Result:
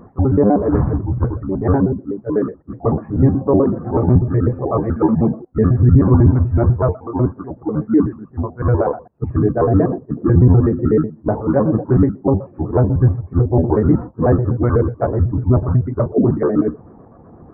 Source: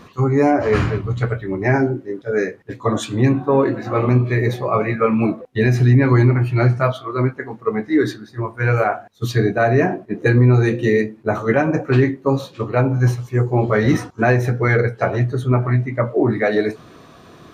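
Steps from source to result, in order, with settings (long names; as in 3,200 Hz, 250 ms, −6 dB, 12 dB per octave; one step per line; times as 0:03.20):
pitch shifter gated in a rhythm −6 semitones, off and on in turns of 62 ms
Gaussian smoothing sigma 8.2 samples
level +3.5 dB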